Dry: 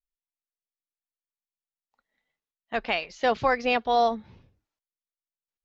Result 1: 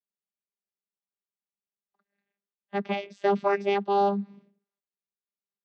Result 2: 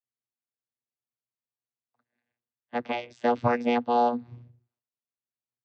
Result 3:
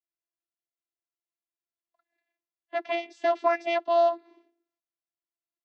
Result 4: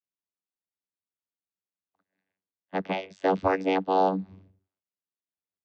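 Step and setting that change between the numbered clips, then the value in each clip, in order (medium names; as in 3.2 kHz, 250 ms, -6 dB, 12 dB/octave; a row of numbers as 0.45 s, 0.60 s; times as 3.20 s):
vocoder, frequency: 200 Hz, 120 Hz, 340 Hz, 95 Hz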